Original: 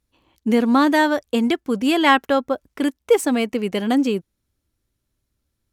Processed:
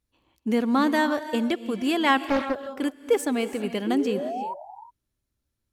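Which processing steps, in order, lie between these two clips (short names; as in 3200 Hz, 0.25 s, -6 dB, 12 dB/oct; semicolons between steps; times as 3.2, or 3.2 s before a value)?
3.86–4.54 painted sound rise 320–990 Hz -25 dBFS; non-linear reverb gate 0.38 s rising, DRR 11 dB; 2.27–2.67 Doppler distortion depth 0.44 ms; gain -6 dB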